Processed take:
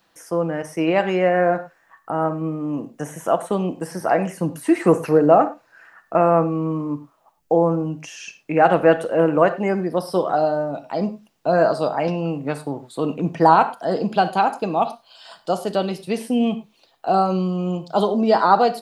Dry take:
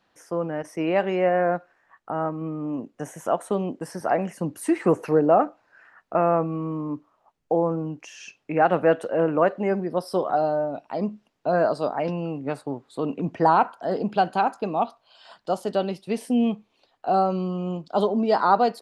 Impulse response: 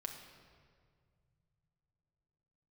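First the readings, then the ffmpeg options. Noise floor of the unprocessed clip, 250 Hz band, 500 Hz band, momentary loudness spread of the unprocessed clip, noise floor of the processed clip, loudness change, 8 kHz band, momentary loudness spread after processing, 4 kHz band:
−70 dBFS, +4.5 dB, +4.0 dB, 12 LU, −61 dBFS, +4.0 dB, can't be measured, 12 LU, +6.0 dB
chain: -filter_complex "[0:a]aemphasis=mode=production:type=50kf,acrossover=split=4000[link_01][link_02];[link_02]acompressor=threshold=-43dB:ratio=4:attack=1:release=60[link_03];[link_01][link_03]amix=inputs=2:normalize=0,asplit=2[link_04][link_05];[1:a]atrim=start_sample=2205,afade=type=out:start_time=0.16:duration=0.01,atrim=end_sample=7497[link_06];[link_05][link_06]afir=irnorm=-1:irlink=0,volume=4.5dB[link_07];[link_04][link_07]amix=inputs=2:normalize=0,volume=-3dB"

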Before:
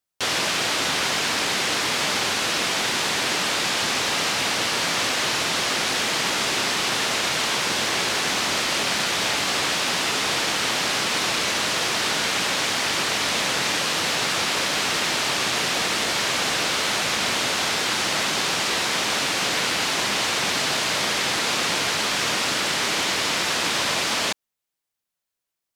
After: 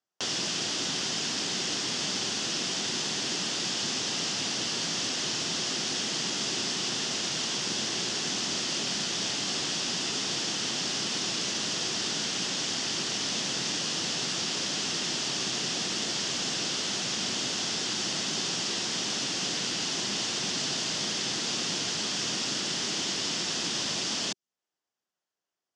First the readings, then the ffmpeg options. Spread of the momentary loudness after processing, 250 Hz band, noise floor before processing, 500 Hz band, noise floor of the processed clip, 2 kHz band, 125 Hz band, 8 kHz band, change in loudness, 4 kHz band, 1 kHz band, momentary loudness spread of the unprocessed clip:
0 LU, −4.5 dB, −84 dBFS, −10.0 dB, below −85 dBFS, −13.0 dB, −5.0 dB, −4.5 dB, −7.0 dB, −6.0 dB, −13.5 dB, 0 LU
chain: -filter_complex "[0:a]acrossover=split=270|3000[link_01][link_02][link_03];[link_02]acompressor=threshold=-41dB:ratio=6[link_04];[link_01][link_04][link_03]amix=inputs=3:normalize=0,highpass=160,equalizer=frequency=370:width_type=q:width=4:gain=4,equalizer=frequency=720:width_type=q:width=4:gain=3,equalizer=frequency=2300:width_type=q:width=4:gain=-7,equalizer=frequency=4000:width_type=q:width=4:gain=-7,lowpass=frequency=6500:width=0.5412,lowpass=frequency=6500:width=1.3066"

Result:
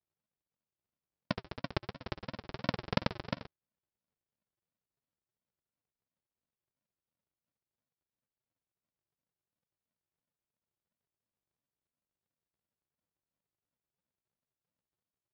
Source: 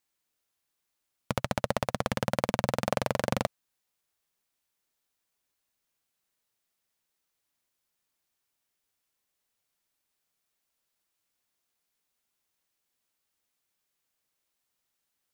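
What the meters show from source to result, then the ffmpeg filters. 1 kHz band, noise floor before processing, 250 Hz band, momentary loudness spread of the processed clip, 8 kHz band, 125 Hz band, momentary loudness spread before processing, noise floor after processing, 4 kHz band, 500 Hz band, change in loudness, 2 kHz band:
−10.0 dB, −82 dBFS, −5.5 dB, 9 LU, below −20 dB, −6.0 dB, 4 LU, below −85 dBFS, −5.0 dB, −11.0 dB, −8.0 dB, −7.0 dB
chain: -af "equalizer=frequency=2700:width_type=o:width=0.35:gain=-12,aresample=11025,acrusher=samples=37:mix=1:aa=0.000001:lfo=1:lforange=22.2:lforate=2.9,aresample=44100,highpass=frequency=340:poles=1"

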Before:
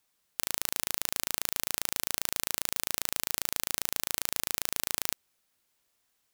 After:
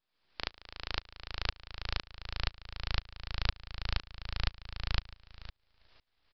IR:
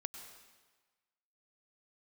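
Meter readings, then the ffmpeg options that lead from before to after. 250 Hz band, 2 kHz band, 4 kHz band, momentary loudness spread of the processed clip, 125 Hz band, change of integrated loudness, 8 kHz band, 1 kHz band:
−4.5 dB, −3.5 dB, −4.0 dB, 10 LU, +10.5 dB, −9.0 dB, −32.0 dB, −3.5 dB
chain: -af "asubboost=boost=6.5:cutoff=81,acontrast=47,alimiter=limit=-9dB:level=0:latency=1:release=11,asoftclip=type=hard:threshold=-12dB,acrusher=bits=9:dc=4:mix=0:aa=0.000001,aecho=1:1:363|726:0.15|0.0254,aresample=11025,aresample=44100,aeval=exprs='val(0)*pow(10,-28*if(lt(mod(-2*n/s,1),2*abs(-2)/1000),1-mod(-2*n/s,1)/(2*abs(-2)/1000),(mod(-2*n/s,1)-2*abs(-2)/1000)/(1-2*abs(-2)/1000))/20)':channel_layout=same,volume=15.5dB"

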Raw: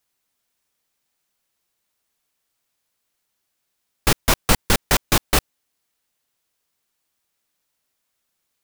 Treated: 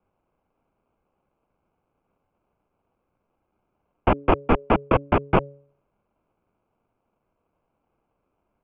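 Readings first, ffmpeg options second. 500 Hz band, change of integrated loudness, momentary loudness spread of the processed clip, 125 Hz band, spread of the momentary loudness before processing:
+4.0 dB, −2.5 dB, 3 LU, −1.0 dB, 3 LU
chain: -af "acrusher=samples=21:mix=1:aa=0.000001,highpass=frequency=210:width_type=q:width=0.5412,highpass=frequency=210:width_type=q:width=1.307,lowpass=frequency=2600:width_type=q:width=0.5176,lowpass=frequency=2600:width_type=q:width=0.7071,lowpass=frequency=2600:width_type=q:width=1.932,afreqshift=-240,bandreject=frequency=141.1:width_type=h:width=4,bandreject=frequency=282.2:width_type=h:width=4,bandreject=frequency=423.3:width_type=h:width=4,bandreject=frequency=564.4:width_type=h:width=4,volume=2dB"

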